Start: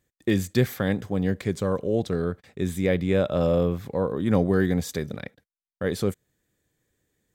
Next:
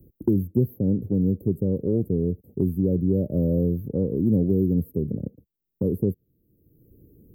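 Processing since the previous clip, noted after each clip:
inverse Chebyshev band-stop filter 1,400–5,400 Hz, stop band 70 dB
multiband upward and downward compressor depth 70%
level +3 dB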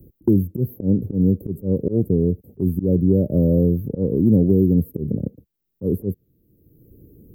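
volume swells 101 ms
level +5.5 dB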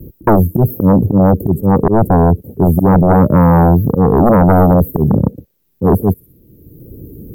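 delay with a high-pass on its return 61 ms, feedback 57%, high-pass 3,100 Hz, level −10 dB
tape wow and flutter 54 cents
sine wavefolder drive 11 dB, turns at −4.5 dBFS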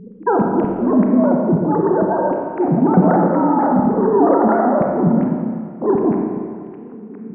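three sine waves on the formant tracks
four-comb reverb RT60 2.2 s, combs from 28 ms, DRR 0.5 dB
level −7.5 dB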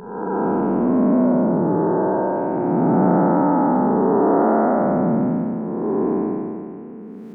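spectrum smeared in time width 390 ms

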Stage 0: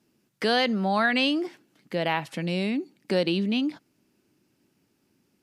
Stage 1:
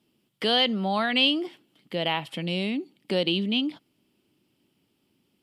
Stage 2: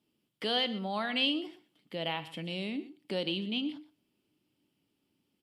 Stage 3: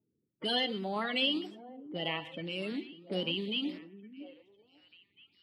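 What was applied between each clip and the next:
thirty-one-band graphic EQ 1,600 Hz −6 dB, 3,150 Hz +11 dB, 6,300 Hz −8 dB; level −1.5 dB
single-tap delay 122 ms −16.5 dB; feedback delay network reverb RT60 0.35 s, low-frequency decay 1×, high-frequency decay 1×, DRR 13 dB; level −8 dB
spectral magnitudes quantised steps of 30 dB; low-pass that shuts in the quiet parts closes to 400 Hz, open at −32.5 dBFS; echo through a band-pass that steps 551 ms, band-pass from 260 Hz, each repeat 1.4 octaves, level −11.5 dB

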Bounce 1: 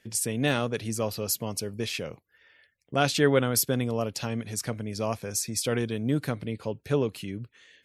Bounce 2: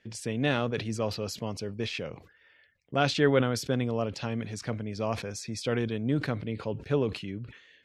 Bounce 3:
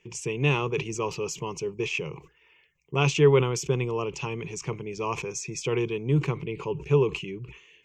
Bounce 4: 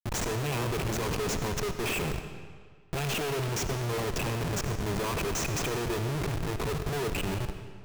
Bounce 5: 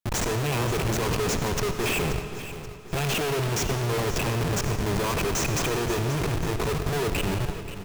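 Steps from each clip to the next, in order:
low-pass filter 4,300 Hz 12 dB per octave; level that may fall only so fast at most 110 dB per second; level −1.5 dB
EQ curve with evenly spaced ripples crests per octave 0.73, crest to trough 17 dB
in parallel at −1 dB: downward compressor 6 to 1, threshold −33 dBFS, peak gain reduction 18.5 dB; on the sum: comparator with hysteresis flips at −31 dBFS; convolution reverb RT60 1.7 s, pre-delay 40 ms, DRR 8.5 dB; level −5 dB
repeating echo 531 ms, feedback 48%, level −13 dB; level +4.5 dB

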